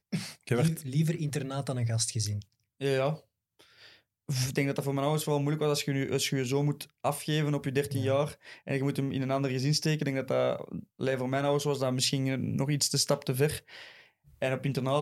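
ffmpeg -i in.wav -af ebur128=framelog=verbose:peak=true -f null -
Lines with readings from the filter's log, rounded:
Integrated loudness:
  I:         -30.0 LUFS
  Threshold: -40.5 LUFS
Loudness range:
  LRA:         3.4 LU
  Threshold: -50.4 LUFS
  LRA low:   -32.5 LUFS
  LRA high:  -29.2 LUFS
True peak:
  Peak:      -12.6 dBFS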